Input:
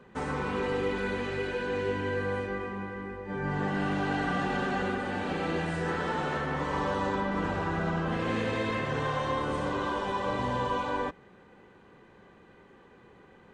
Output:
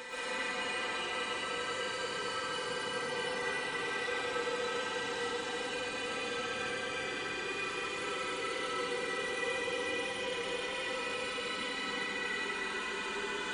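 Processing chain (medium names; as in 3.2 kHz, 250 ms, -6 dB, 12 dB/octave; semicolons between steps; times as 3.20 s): high-pass 43 Hz; pre-emphasis filter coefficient 0.97; Paulstretch 43×, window 0.05 s, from 0.65 s; reverberation RT60 1.7 s, pre-delay 85 ms, DRR -9.5 dB; trim +2.5 dB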